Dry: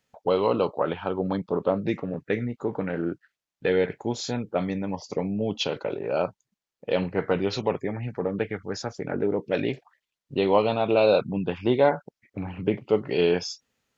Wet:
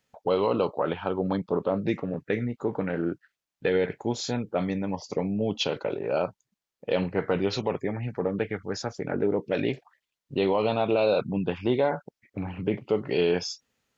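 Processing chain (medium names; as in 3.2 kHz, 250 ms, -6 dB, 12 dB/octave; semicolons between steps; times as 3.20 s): peak limiter -14 dBFS, peak gain reduction 7 dB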